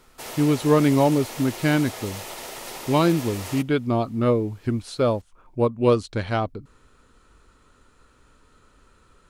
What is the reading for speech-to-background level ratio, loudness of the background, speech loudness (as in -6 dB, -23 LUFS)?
12.5 dB, -35.0 LUFS, -22.5 LUFS